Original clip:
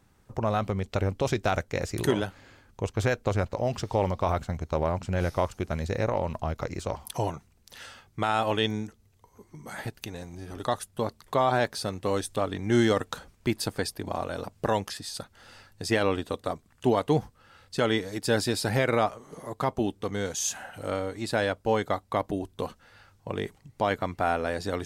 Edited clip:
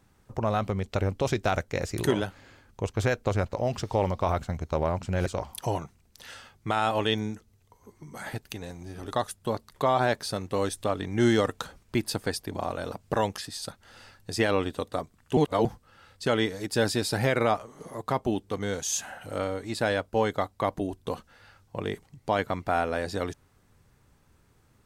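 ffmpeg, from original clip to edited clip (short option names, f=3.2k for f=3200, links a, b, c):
-filter_complex "[0:a]asplit=4[a][b][c][d];[a]atrim=end=5.262[e];[b]atrim=start=6.778:end=16.892[f];[c]atrim=start=16.888:end=17.172,asetpts=PTS-STARTPTS,areverse[g];[d]atrim=start=17.168[h];[e][f]acrossfade=d=0.004:c1=hsin:c2=hsin[i];[i][g]acrossfade=d=0.004:c1=hsin:c2=hsin[j];[j][h]acrossfade=d=0.004:c1=hsin:c2=hsin"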